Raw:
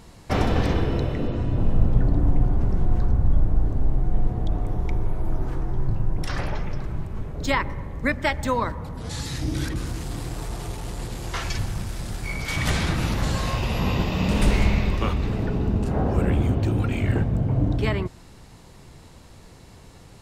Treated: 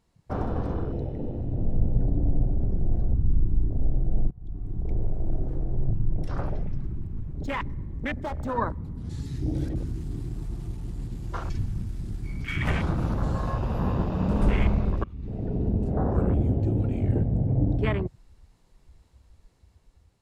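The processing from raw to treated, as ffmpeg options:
-filter_complex "[0:a]asettb=1/sr,asplit=3[s0][s1][s2];[s0]atrim=end=6.904[s3];[s1]atrim=start=6.9:end=8.58,asetpts=PTS-STARTPTS,afade=t=in:d=0.004:c=qsin,afade=t=out:st=1.676:d=0.004:c=qsin,asoftclip=type=hard:threshold=0.0562[s4];[s2]atrim=start=8.576[s5];[s3][s4]acrossfade=d=0.004:c1=hsin:c2=qsin[s6];[s6][s5]acrossfade=d=0.004:c1=qsin:c2=hsin,asplit=3[s7][s8][s9];[s7]atrim=end=4.31,asetpts=PTS-STARTPTS,afade=t=out:st=4.306:d=0.004:c=hsin:silence=0.0707946[s10];[s8]atrim=start=4.31:end=15.04,asetpts=PTS-STARTPTS,afade=t=in:d=0.66:silence=0.0707946,afade=t=out:st=10.726:d=0.004:c=hsin:silence=0.0891251[s11];[s9]atrim=start=15.04,asetpts=PTS-STARTPTS,afade=t=in:d=0.56:silence=0.0891251[s12];[s10][s11][s12]concat=n=3:v=0:a=1,afwtdn=0.0398,dynaudnorm=f=610:g=5:m=2,volume=0.447"

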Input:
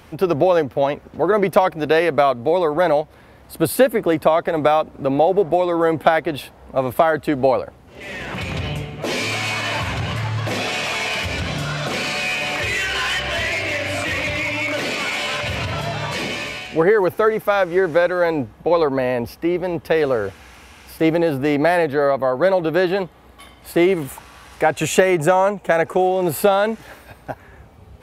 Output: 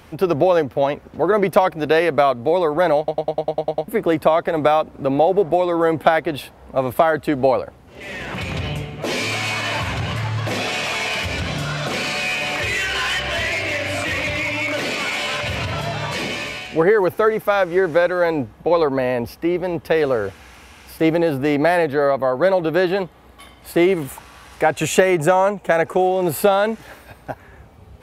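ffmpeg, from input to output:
-filter_complex "[0:a]asplit=10[s0][s1][s2][s3][s4][s5][s6][s7][s8][s9];[s0]atrim=end=3.082[s10];[s1]atrim=start=2.978:end=3.082[s11];[s2]atrim=start=2.978:end=3.082[s12];[s3]atrim=start=2.978:end=3.082[s13];[s4]atrim=start=2.978:end=3.082[s14];[s5]atrim=start=2.978:end=3.082[s15];[s6]atrim=start=2.978:end=3.082[s16];[s7]atrim=start=2.978:end=3.082[s17];[s8]atrim=start=2.978:end=3.082[s18];[s9]atrim=start=3.878[s19];[s10][s11]acrossfade=d=0.004:c1=hsin:c2=hsin[s20];[s20][s12]acrossfade=d=0.004:c1=hsin:c2=hsin[s21];[s21][s13]acrossfade=d=0.004:c1=hsin:c2=hsin[s22];[s22][s14]acrossfade=d=0.004:c1=hsin:c2=hsin[s23];[s23][s15]acrossfade=d=0.004:c1=hsin:c2=hsin[s24];[s24][s16]acrossfade=d=0.004:c1=hsin:c2=hsin[s25];[s25][s17]acrossfade=d=0.004:c1=hsin:c2=hsin[s26];[s26][s18]acrossfade=d=0.004:c1=hsin:c2=hsin[s27];[s27][s19]acrossfade=d=0.004:c1=hsin:c2=hsin"

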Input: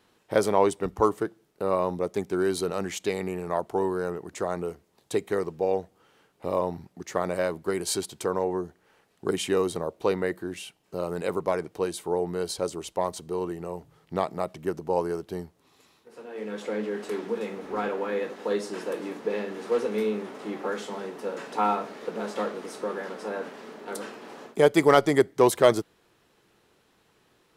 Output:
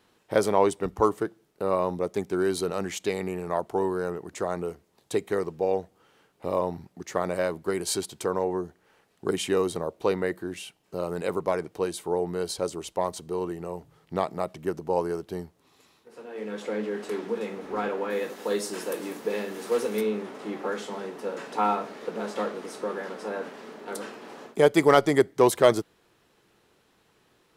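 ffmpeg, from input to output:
-filter_complex "[0:a]asettb=1/sr,asplit=3[s0][s1][s2];[s0]atrim=end=18.104[s3];[s1]atrim=start=18.1:end=20.01,asetpts=PTS-STARTPTS,afade=t=in:d=0.004:c=qsin,afade=t=out:st=1.906:d=0.004:c=qsin,aemphasis=mode=production:type=50fm[s4];[s2]atrim=start=20.006[s5];[s3][s4]acrossfade=d=0.004:c1=hsin:c2=qsin[s6];[s6][s5]acrossfade=d=0.004:c1=qsin:c2=hsin"

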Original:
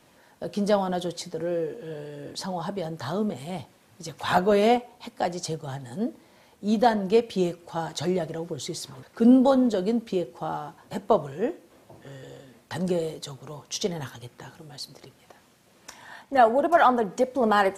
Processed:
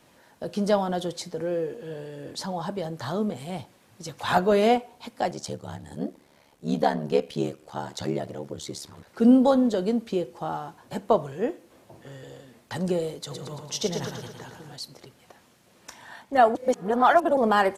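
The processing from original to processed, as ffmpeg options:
-filter_complex "[0:a]asettb=1/sr,asplit=3[s0][s1][s2];[s0]atrim=end=5.304[s3];[s1]atrim=start=5.3:end=9.07,asetpts=PTS-STARTPTS,afade=t=in:d=0.004:c=qsin,afade=t=out:st=3.766:d=0.004:c=qsin,aeval=exprs='val(0)*sin(2*PI*36*n/s)':c=same[s4];[s2]atrim=start=9.066[s5];[s3][s4]acrossfade=d=0.004:c1=hsin:c2=qsin[s6];[s6][s5]acrossfade=d=0.004:c1=qsin:c2=hsin,asplit=3[s7][s8][s9];[s7]afade=t=out:st=13.3:d=0.02[s10];[s8]aecho=1:1:112|224|336|448|560|672|784|896:0.501|0.291|0.169|0.0978|0.0567|0.0329|0.0191|0.0111,afade=t=in:st=13.3:d=0.02,afade=t=out:st=14.75:d=0.02[s11];[s9]afade=t=in:st=14.75:d=0.02[s12];[s10][s11][s12]amix=inputs=3:normalize=0,asplit=3[s13][s14][s15];[s13]atrim=end=16.552[s16];[s14]atrim=start=16.548:end=17.372,asetpts=PTS-STARTPTS,areverse[s17];[s15]atrim=start=17.368[s18];[s16][s17]acrossfade=d=0.004:c1=hsin:c2=hsin[s19];[s19][s18]acrossfade=d=0.004:c1=hsin:c2=hsin"

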